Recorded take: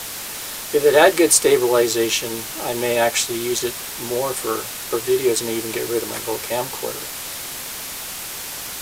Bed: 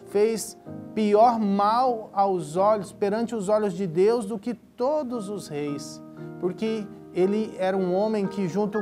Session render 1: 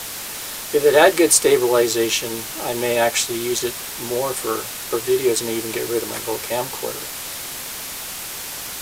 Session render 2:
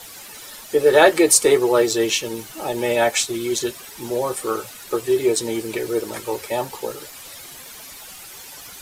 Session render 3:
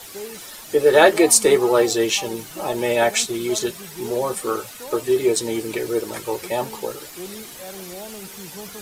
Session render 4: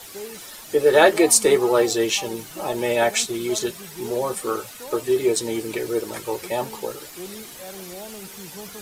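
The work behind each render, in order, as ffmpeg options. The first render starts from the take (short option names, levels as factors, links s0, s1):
-af anull
-af "afftdn=nr=12:nf=-31"
-filter_complex "[1:a]volume=0.211[s0];[0:a][s0]amix=inputs=2:normalize=0"
-af "volume=0.841"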